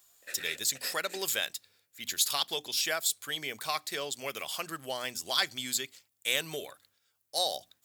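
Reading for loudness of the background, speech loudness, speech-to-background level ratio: -45.0 LUFS, -32.0 LUFS, 13.0 dB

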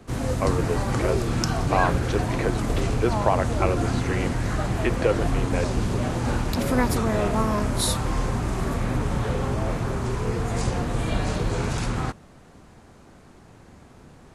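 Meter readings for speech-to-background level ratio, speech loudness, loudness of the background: -3.0 dB, -28.5 LUFS, -25.5 LUFS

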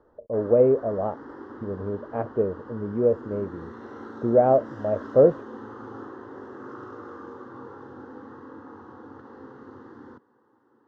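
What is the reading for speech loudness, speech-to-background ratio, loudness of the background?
-23.5 LUFS, 18.5 dB, -42.0 LUFS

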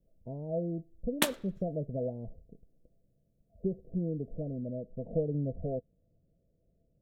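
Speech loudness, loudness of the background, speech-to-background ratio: -36.5 LUFS, -32.5 LUFS, -4.0 dB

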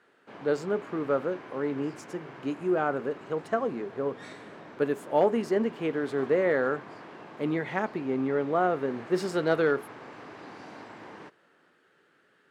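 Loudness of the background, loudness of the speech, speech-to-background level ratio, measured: -45.5 LUFS, -29.0 LUFS, 16.5 dB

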